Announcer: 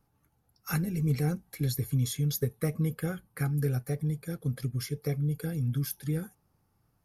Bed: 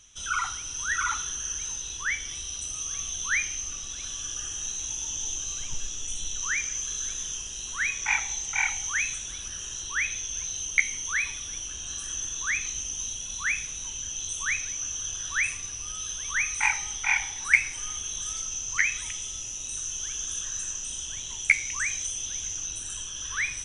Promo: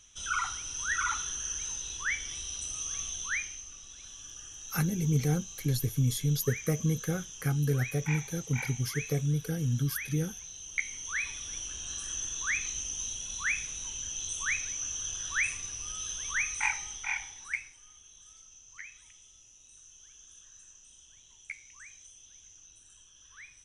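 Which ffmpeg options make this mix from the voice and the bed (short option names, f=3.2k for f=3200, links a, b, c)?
-filter_complex "[0:a]adelay=4050,volume=0.5dB[a];[1:a]volume=6dB,afade=t=out:st=3:d=0.65:silence=0.354813,afade=t=in:st=10.61:d=0.97:silence=0.354813,afade=t=out:st=16.24:d=1.55:silence=0.11885[b];[a][b]amix=inputs=2:normalize=0"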